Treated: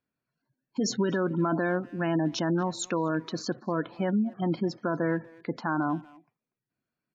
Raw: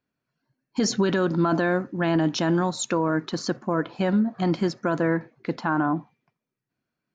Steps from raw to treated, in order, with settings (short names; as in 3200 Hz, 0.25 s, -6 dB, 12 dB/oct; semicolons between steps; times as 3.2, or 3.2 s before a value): spectral gate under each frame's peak -25 dB strong; speakerphone echo 0.24 s, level -21 dB; gain -4.5 dB